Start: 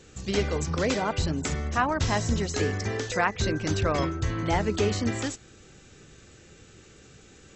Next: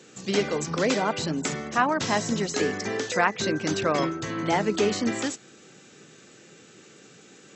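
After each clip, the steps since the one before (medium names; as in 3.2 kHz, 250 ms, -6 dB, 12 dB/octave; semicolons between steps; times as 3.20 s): high-pass 160 Hz 24 dB/octave; trim +2.5 dB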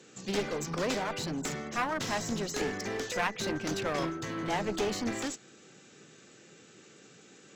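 one-sided clip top -29.5 dBFS; trim -4.5 dB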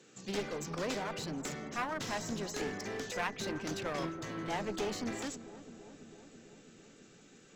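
filtered feedback delay 330 ms, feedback 77%, low-pass 1.2 kHz, level -14 dB; trim -5 dB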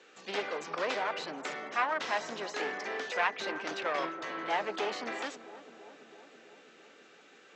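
band-pass 570–3300 Hz; trim +7.5 dB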